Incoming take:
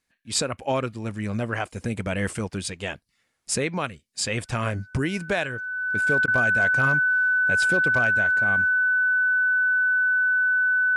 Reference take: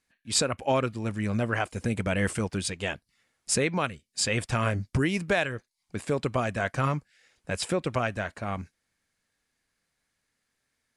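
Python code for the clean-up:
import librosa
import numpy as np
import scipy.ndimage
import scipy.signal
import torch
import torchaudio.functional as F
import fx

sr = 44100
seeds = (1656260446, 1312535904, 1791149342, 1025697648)

y = fx.fix_declip(x, sr, threshold_db=-13.0)
y = fx.notch(y, sr, hz=1500.0, q=30.0)
y = fx.fix_interpolate(y, sr, at_s=(6.26,), length_ms=17.0)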